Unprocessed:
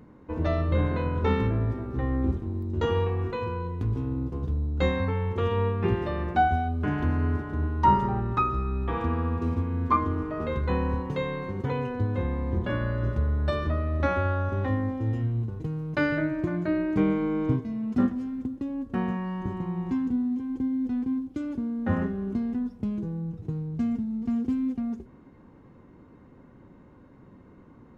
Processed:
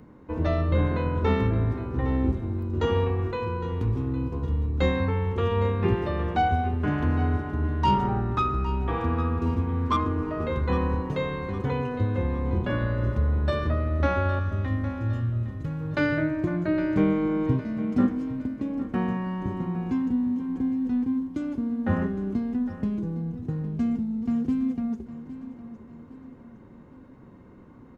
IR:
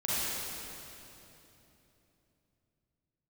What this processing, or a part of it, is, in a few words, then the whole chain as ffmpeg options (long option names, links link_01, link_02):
one-band saturation: -filter_complex "[0:a]acrossover=split=460|3000[link_01][link_02][link_03];[link_02]asoftclip=type=tanh:threshold=-21.5dB[link_04];[link_01][link_04][link_03]amix=inputs=3:normalize=0,asettb=1/sr,asplit=3[link_05][link_06][link_07];[link_05]atrim=end=14.394[link_08];[link_06]atrim=start=14.39:end=15.81,asetpts=PTS-STARTPTS,afade=type=in:duration=0.004:curve=qsin,afade=type=out:start_time=1.416:duration=0.004:curve=qsin,equalizer=frequency=600:width_type=o:width=1.6:gain=-13[link_09];[link_07]atrim=start=15.806[link_10];[link_08][link_09]acrossfade=duration=0.004:curve1=hsin:curve2=qsin[link_11];[link_11][link_10]acrossfade=duration=0.004:curve1=qsin:curve2=hsin,aecho=1:1:810|1620|2430|3240:0.2|0.0878|0.0386|0.017,volume=1.5dB"